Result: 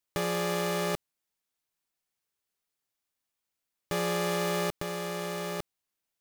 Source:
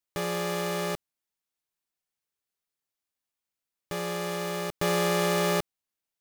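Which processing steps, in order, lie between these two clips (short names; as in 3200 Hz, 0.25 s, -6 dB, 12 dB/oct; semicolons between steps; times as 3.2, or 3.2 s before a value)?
negative-ratio compressor -31 dBFS, ratio -1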